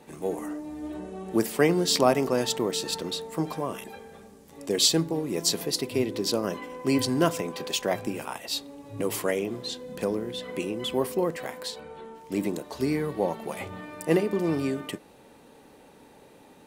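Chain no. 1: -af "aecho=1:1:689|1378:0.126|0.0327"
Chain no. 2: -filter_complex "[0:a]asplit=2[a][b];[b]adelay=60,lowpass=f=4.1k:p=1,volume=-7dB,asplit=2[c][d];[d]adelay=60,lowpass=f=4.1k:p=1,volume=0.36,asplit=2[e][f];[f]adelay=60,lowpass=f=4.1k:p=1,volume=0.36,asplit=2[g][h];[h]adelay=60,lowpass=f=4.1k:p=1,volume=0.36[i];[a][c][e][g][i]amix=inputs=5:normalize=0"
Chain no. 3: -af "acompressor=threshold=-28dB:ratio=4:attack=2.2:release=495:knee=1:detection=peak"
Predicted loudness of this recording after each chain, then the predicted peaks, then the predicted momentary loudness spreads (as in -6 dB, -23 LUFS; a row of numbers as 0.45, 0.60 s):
-28.0, -27.0, -35.0 LUFS; -7.0, -7.5, -17.5 dBFS; 16, 15, 13 LU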